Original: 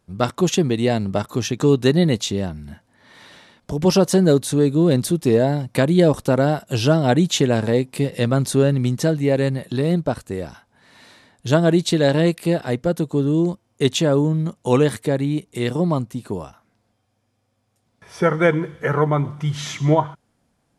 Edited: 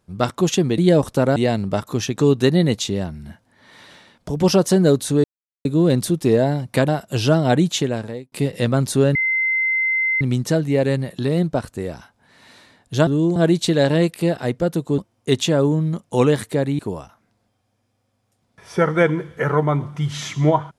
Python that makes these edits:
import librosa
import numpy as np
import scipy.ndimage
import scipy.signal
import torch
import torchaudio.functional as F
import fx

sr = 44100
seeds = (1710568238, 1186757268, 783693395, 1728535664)

y = fx.edit(x, sr, fx.insert_silence(at_s=4.66, length_s=0.41),
    fx.move(start_s=5.89, length_s=0.58, to_s=0.78),
    fx.fade_out_span(start_s=7.19, length_s=0.72),
    fx.insert_tone(at_s=8.74, length_s=1.06, hz=2070.0, db=-16.5),
    fx.move(start_s=13.22, length_s=0.29, to_s=11.6),
    fx.cut(start_s=15.32, length_s=0.91), tone=tone)